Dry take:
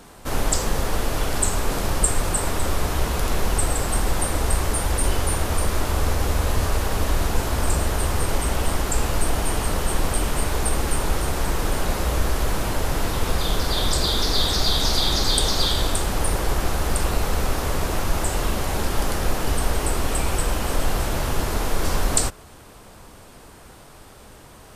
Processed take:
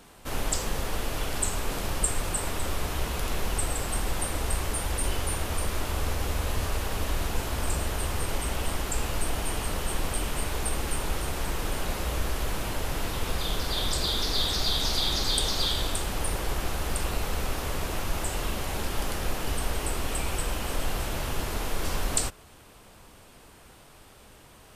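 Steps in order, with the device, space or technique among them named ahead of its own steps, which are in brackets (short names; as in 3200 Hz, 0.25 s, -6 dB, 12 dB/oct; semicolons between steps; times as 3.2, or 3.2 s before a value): presence and air boost (bell 2800 Hz +4.5 dB 1 oct; high shelf 9800 Hz +3.5 dB); gain -7.5 dB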